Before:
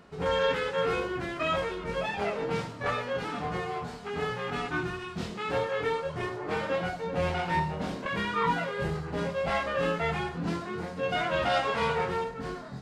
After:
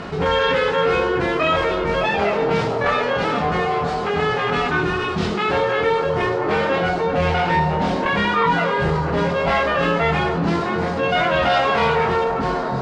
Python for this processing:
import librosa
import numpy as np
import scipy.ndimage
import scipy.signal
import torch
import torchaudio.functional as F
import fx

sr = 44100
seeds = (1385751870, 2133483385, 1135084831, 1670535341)

p1 = scipy.signal.sosfilt(scipy.signal.butter(2, 5500.0, 'lowpass', fs=sr, output='sos'), x)
p2 = fx.hum_notches(p1, sr, base_hz=60, count=9)
p3 = p2 + fx.echo_wet_bandpass(p2, sr, ms=244, feedback_pct=74, hz=560.0, wet_db=-10.0, dry=0)
p4 = fx.env_flatten(p3, sr, amount_pct=50)
y = p4 * librosa.db_to_amplitude(8.0)